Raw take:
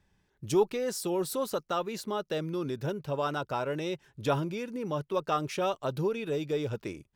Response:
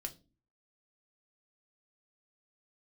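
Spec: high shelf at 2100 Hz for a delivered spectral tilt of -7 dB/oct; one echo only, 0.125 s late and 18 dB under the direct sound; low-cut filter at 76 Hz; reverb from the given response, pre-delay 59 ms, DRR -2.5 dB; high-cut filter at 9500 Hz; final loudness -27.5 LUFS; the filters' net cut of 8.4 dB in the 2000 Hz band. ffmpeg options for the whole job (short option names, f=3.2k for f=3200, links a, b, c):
-filter_complex "[0:a]highpass=76,lowpass=9.5k,equalizer=f=2k:t=o:g=-8.5,highshelf=f=2.1k:g=-6.5,aecho=1:1:125:0.126,asplit=2[a][b];[1:a]atrim=start_sample=2205,adelay=59[c];[b][c]afir=irnorm=-1:irlink=0,volume=5dB[d];[a][d]amix=inputs=2:normalize=0"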